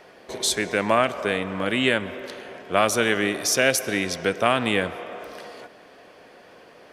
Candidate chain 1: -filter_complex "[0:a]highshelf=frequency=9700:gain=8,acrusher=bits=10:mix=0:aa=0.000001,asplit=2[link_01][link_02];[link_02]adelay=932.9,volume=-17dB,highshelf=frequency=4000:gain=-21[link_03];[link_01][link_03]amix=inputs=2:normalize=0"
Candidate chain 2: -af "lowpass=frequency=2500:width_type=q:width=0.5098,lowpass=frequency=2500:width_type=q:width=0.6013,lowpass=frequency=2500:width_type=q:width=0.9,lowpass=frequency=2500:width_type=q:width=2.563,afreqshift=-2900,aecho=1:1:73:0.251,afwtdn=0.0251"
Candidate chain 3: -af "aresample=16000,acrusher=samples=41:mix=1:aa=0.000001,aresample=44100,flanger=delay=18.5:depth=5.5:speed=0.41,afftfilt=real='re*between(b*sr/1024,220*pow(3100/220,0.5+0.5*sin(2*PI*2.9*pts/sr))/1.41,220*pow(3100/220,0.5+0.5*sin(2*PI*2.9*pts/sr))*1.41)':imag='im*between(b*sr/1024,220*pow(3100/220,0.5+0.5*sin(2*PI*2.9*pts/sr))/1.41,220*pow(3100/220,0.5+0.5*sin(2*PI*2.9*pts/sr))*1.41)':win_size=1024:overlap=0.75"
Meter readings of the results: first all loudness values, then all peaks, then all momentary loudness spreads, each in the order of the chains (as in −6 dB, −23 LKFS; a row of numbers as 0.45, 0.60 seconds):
−22.0, −21.5, −37.5 LKFS; −3.0, −7.0, −14.0 dBFS; 17, 18, 21 LU